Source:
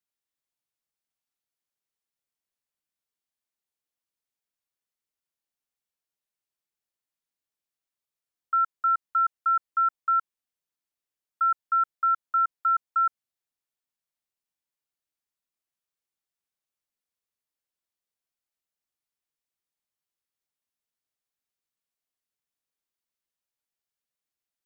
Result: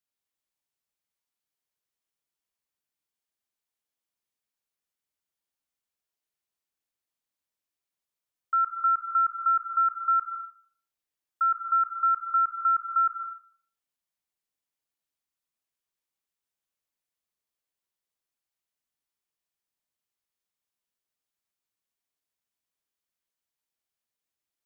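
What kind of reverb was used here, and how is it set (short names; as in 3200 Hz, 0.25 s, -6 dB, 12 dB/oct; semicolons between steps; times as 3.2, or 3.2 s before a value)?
plate-style reverb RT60 0.52 s, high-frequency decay 0.95×, pre-delay 0.115 s, DRR 3.5 dB; gain -1 dB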